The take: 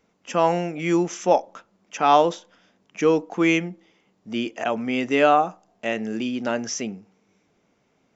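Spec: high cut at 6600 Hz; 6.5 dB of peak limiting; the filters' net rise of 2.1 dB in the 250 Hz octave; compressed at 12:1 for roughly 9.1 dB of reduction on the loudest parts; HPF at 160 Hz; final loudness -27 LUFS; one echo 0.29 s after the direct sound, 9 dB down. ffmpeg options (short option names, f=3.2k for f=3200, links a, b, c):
-af "highpass=160,lowpass=6.6k,equalizer=f=250:t=o:g=3.5,acompressor=threshold=-20dB:ratio=12,alimiter=limit=-18dB:level=0:latency=1,aecho=1:1:290:0.355,volume=1.5dB"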